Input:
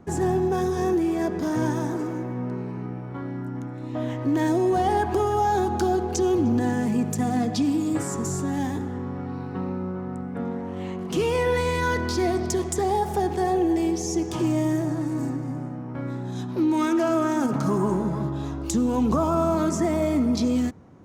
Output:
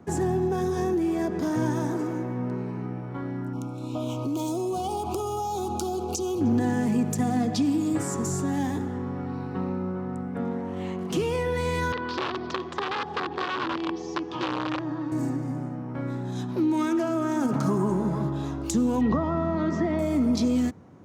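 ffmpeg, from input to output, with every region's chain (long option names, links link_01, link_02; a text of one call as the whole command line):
ffmpeg -i in.wav -filter_complex "[0:a]asettb=1/sr,asplit=3[link_01][link_02][link_03];[link_01]atrim=end=3.534[link_04];[link_02]atrim=start=3.53:end=6.41,asetpts=PTS-STARTPTS,afade=type=in:duration=0.004:curve=qsin,afade=type=out:start_time=2.876:duration=0.004:curve=qsin,highshelf=frequency=3600:gain=11.5,acompressor=threshold=-25dB:ratio=5:attack=3.2:release=140:knee=1:detection=peak,asuperstop=centerf=1800:order=12:qfactor=2.1[link_05];[link_03]atrim=start=6.406[link_06];[link_04][link_05]acrossfade=duration=0.004:curve1=hsin:curve2=qsin[link_07];[link_07][link_06]acrossfade=duration=0.004:curve1=qsin:curve2=hsin,asettb=1/sr,asplit=3[link_08][link_09][link_10];[link_08]atrim=end=11.924[link_11];[link_09]atrim=start=11.92:end=15.12,asetpts=PTS-STARTPTS,afade=type=in:duration=0.004:curve=qsin,afade=type=out:start_time=3.196:duration=0.004:curve=qsin,aeval=exprs='(mod(7.08*val(0)+1,2)-1)/7.08':channel_layout=same,highpass=180,equalizer=frequency=200:width_type=q:width=4:gain=-10,equalizer=frequency=360:width_type=q:width=4:gain=-5,equalizer=frequency=660:width_type=q:width=4:gain=-8,equalizer=frequency=1100:width_type=q:width=4:gain=5,equalizer=frequency=2100:width_type=q:width=4:gain=-6,lowpass=frequency=3900:width=0.5412,lowpass=frequency=3900:width=1.3066[link_12];[link_10]atrim=start=15.116[link_13];[link_11][link_12]acrossfade=duration=0.004:curve1=hsin:curve2=qsin[link_14];[link_14][link_13]acrossfade=duration=0.004:curve1=qsin:curve2=hsin,asettb=1/sr,asplit=3[link_15][link_16][link_17];[link_15]atrim=end=19.014[link_18];[link_16]atrim=start=19.01:end=19.99,asetpts=PTS-STARTPTS,afade=type=in:duration=0.004:curve=qsin,afade=type=out:start_time=0.976:duration=0.004:curve=qsin,aeval=exprs='val(0)+0.01*sin(2*PI*1900*n/s)':channel_layout=same,lowpass=frequency=4300:width=0.5412,lowpass=frequency=4300:width=1.3066[link_19];[link_17]atrim=start=19.986[link_20];[link_18][link_19]acrossfade=duration=0.004:curve1=hsin:curve2=qsin[link_21];[link_21][link_20]acrossfade=duration=0.004:curve1=qsin:curve2=hsin,highpass=73,acrossover=split=280[link_22][link_23];[link_23]acompressor=threshold=-26dB:ratio=6[link_24];[link_22][link_24]amix=inputs=2:normalize=0" out.wav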